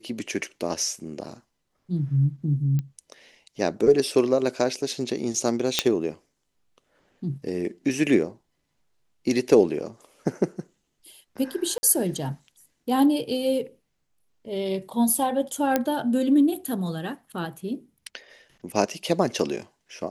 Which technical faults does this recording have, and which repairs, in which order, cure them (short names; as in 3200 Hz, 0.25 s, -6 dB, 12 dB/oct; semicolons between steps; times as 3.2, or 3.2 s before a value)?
2.79 pop -17 dBFS
5.79 pop -3 dBFS
11.78–11.83 gap 50 ms
15.76 pop -7 dBFS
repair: de-click; interpolate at 11.78, 50 ms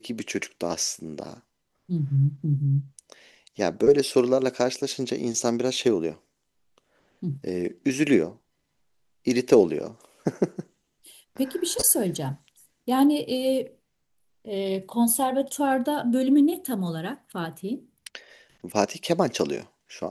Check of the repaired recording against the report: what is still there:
none